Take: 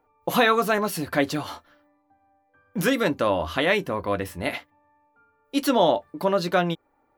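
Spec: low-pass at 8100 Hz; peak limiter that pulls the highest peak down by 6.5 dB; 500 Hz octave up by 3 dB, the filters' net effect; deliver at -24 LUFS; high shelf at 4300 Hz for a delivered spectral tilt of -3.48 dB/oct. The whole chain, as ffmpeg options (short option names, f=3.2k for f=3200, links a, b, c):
-af "lowpass=8.1k,equalizer=f=500:t=o:g=3.5,highshelf=f=4.3k:g=3.5,alimiter=limit=-11dB:level=0:latency=1"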